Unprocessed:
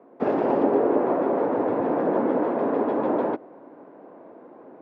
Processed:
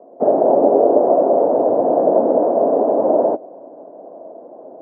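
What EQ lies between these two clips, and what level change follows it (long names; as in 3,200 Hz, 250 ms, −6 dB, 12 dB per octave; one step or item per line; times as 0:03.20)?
low-pass with resonance 650 Hz, resonance Q 4.4
high-frequency loss of the air 60 metres
low-shelf EQ 73 Hz −12 dB
+2.0 dB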